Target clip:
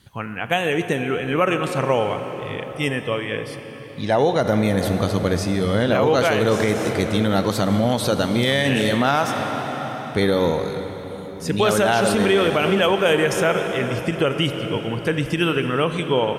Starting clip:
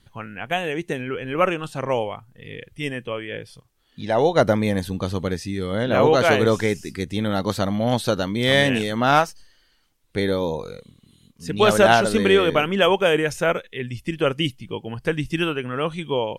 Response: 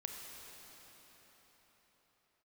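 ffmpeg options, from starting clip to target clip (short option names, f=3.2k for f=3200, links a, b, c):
-filter_complex "[0:a]highshelf=f=8.4k:g=4,asplit=2[a][b];[1:a]atrim=start_sample=2205,lowshelf=f=81:g=12[c];[b][c]afir=irnorm=-1:irlink=0,volume=0.5dB[d];[a][d]amix=inputs=2:normalize=0,alimiter=limit=-8.5dB:level=0:latency=1:release=108,highpass=79"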